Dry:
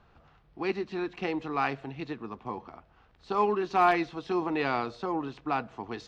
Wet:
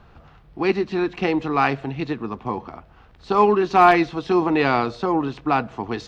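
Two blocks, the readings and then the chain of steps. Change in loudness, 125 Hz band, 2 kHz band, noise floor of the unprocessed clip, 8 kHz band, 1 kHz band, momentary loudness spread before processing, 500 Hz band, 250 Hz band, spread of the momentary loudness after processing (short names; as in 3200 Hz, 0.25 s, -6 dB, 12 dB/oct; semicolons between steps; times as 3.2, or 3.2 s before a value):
+10.0 dB, +12.0 dB, +9.0 dB, -62 dBFS, n/a, +9.5 dB, 14 LU, +10.0 dB, +10.5 dB, 13 LU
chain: low shelf 260 Hz +4 dB; gain +9 dB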